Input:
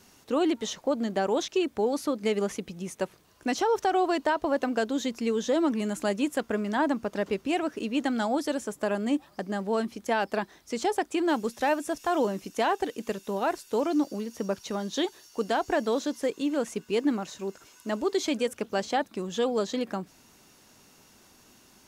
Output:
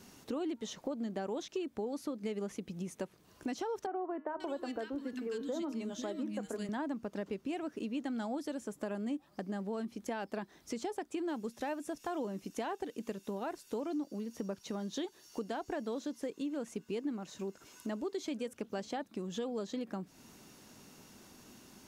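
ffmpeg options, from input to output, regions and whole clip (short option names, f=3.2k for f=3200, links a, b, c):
-filter_complex "[0:a]asettb=1/sr,asplit=3[a][b][c];[a]atrim=end=3.864[d];[b]atrim=start=3.86:end=6.69,asetpts=PTS-STARTPTS,afade=t=in:d=0.004:c=qsin,afade=t=out:st=2.826:d=0.004:c=qsin,bandreject=f=155.7:t=h:w=4,bandreject=f=311.4:t=h:w=4,bandreject=f=467.1:t=h:w=4,bandreject=f=622.8:t=h:w=4,bandreject=f=778.5:t=h:w=4,bandreject=f=934.2:t=h:w=4,bandreject=f=1.0899k:t=h:w=4,bandreject=f=1.2456k:t=h:w=4,bandreject=f=1.4013k:t=h:w=4,bandreject=f=1.557k:t=h:w=4,bandreject=f=1.7127k:t=h:w=4,bandreject=f=1.8684k:t=h:w=4,bandreject=f=2.0241k:t=h:w=4,bandreject=f=2.1798k:t=h:w=4,bandreject=f=2.3355k:t=h:w=4,bandreject=f=2.4912k:t=h:w=4,bandreject=f=2.6469k:t=h:w=4,bandreject=f=2.8026k:t=h:w=4,bandreject=f=2.9583k:t=h:w=4,bandreject=f=3.114k:t=h:w=4,bandreject=f=3.2697k:t=h:w=4,bandreject=f=3.4254k:t=h:w=4,bandreject=f=3.5811k:t=h:w=4,bandreject=f=3.7368k:t=h:w=4,bandreject=f=3.8925k:t=h:w=4,bandreject=f=4.0482k:t=h:w=4,bandreject=f=4.2039k:t=h:w=4,bandreject=f=4.3596k:t=h:w=4,acrossover=split=240|1700[e][f][g];[e]adelay=500[h];[g]adelay=540[i];[h][f][i]amix=inputs=3:normalize=0,atrim=end_sample=124803[j];[c]atrim=start=6.686[k];[d][j]acrossfade=d=0.004:c1=hsin:c2=qsin[l];[l][k]acrossfade=d=0.004:c1=qsin:c2=hsin,equalizer=f=210:w=0.64:g=6,acompressor=threshold=-38dB:ratio=3,volume=-1.5dB"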